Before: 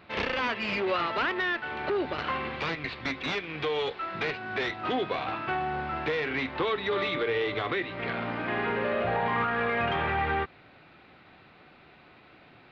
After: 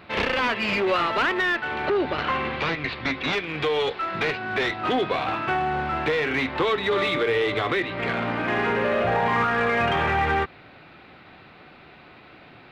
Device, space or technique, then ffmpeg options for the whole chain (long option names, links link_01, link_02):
parallel distortion: -filter_complex "[0:a]asplit=2[link_01][link_02];[link_02]asoftclip=type=hard:threshold=-30.5dB,volume=-9dB[link_03];[link_01][link_03]amix=inputs=2:normalize=0,asettb=1/sr,asplit=3[link_04][link_05][link_06];[link_04]atrim=end=1.874[link_07];[link_05]atrim=start=1.87:end=3.33,asetpts=PTS-STARTPTS,afade=type=in:duration=0.004:curve=qsin,afade=type=out:start_time=1.456:duration=0.004:curve=qsin,lowpass=5600[link_08];[link_06]atrim=start=3.326[link_09];[link_07][link_08]acrossfade=duration=0.004:curve1=hsin:curve2=qsin[link_10];[link_10][link_09]acrossfade=duration=0.004:curve1=qsin:curve2=hsin,volume=4dB"